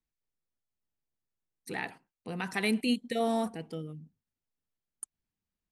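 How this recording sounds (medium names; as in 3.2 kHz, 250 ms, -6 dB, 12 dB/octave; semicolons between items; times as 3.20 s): noise floor -92 dBFS; spectral tilt -4.5 dB/octave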